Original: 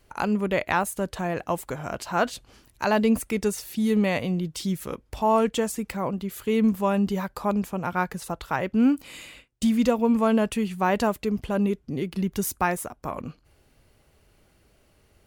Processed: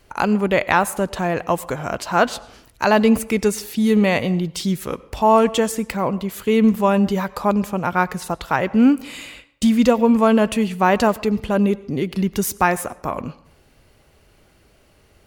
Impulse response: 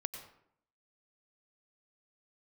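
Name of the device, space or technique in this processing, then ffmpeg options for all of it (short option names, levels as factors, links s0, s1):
filtered reverb send: -filter_complex "[0:a]asplit=2[s0][s1];[s1]highpass=f=300:p=1,lowpass=8300[s2];[1:a]atrim=start_sample=2205[s3];[s2][s3]afir=irnorm=-1:irlink=0,volume=0.355[s4];[s0][s4]amix=inputs=2:normalize=0,volume=1.78"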